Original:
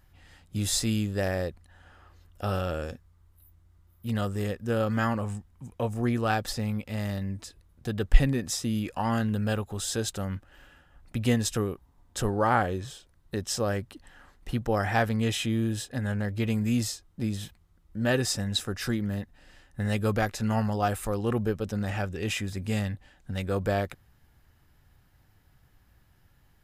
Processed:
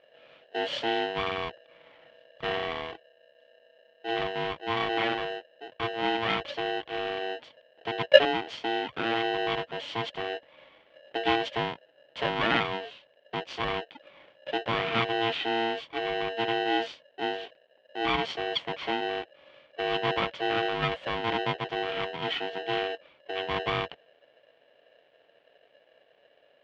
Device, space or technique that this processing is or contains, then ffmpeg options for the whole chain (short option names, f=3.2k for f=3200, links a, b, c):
ring modulator pedal into a guitar cabinet: -af "aeval=exprs='val(0)*sgn(sin(2*PI*570*n/s))':c=same,highpass=85,equalizer=f=90:t=q:w=4:g=-10,equalizer=f=200:t=q:w=4:g=-6,equalizer=f=1.2k:t=q:w=4:g=-4,equalizer=f=3.1k:t=q:w=4:g=7,lowpass=f=3.4k:w=0.5412,lowpass=f=3.4k:w=1.3066,volume=-1dB"